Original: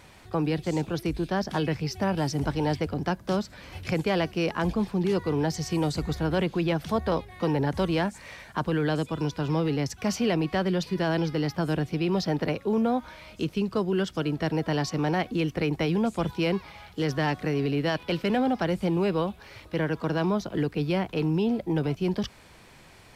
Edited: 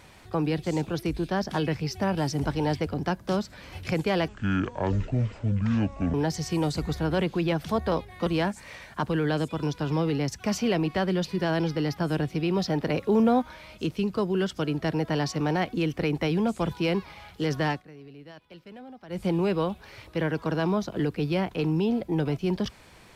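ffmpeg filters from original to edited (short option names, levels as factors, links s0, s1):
-filter_complex "[0:a]asplit=8[s0][s1][s2][s3][s4][s5][s6][s7];[s0]atrim=end=4.284[s8];[s1]atrim=start=4.28:end=5.34,asetpts=PTS-STARTPTS,asetrate=25137,aresample=44100[s9];[s2]atrim=start=5.336:end=7.462[s10];[s3]atrim=start=7.838:end=12.522[s11];[s4]atrim=start=12.518:end=13.002,asetpts=PTS-STARTPTS,volume=1.5[s12];[s5]atrim=start=12.998:end=17.41,asetpts=PTS-STARTPTS,afade=t=out:st=4.272:d=0.14:silence=0.1[s13];[s6]atrim=start=17.41:end=18.66,asetpts=PTS-STARTPTS,volume=0.1[s14];[s7]atrim=start=18.66,asetpts=PTS-STARTPTS,afade=t=in:d=0.14:silence=0.1[s15];[s8][s9]acrossfade=d=0.004:c1=hsin:c2=hsin[s16];[s16][s10]acrossfade=d=0.004:c1=hsin:c2=hsin[s17];[s17][s11]acrossfade=d=0.004:c1=hsin:c2=hsin[s18];[s18][s12]acrossfade=d=0.004:c1=hsin:c2=hsin[s19];[s13][s14][s15]concat=n=3:v=0:a=1[s20];[s19][s20]acrossfade=d=0.004:c1=hsin:c2=hsin"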